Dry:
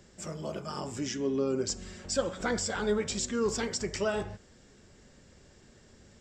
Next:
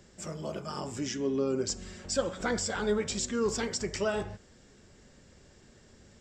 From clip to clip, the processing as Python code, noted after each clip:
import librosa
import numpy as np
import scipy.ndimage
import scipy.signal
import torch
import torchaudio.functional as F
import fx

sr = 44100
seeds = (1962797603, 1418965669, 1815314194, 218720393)

y = x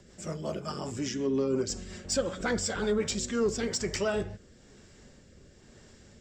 y = fx.rotary_switch(x, sr, hz=5.5, then_hz=1.0, switch_at_s=2.8)
y = 10.0 ** (-22.0 / 20.0) * np.tanh(y / 10.0 ** (-22.0 / 20.0))
y = F.gain(torch.from_numpy(y), 4.0).numpy()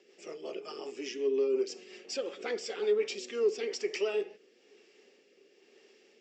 y = fx.cabinet(x, sr, low_hz=350.0, low_slope=24, high_hz=5400.0, hz=(410.0, 610.0, 1000.0, 1500.0, 2600.0, 3900.0), db=(7, -8, -9, -10, 8, -5))
y = F.gain(torch.from_numpy(y), -2.5).numpy()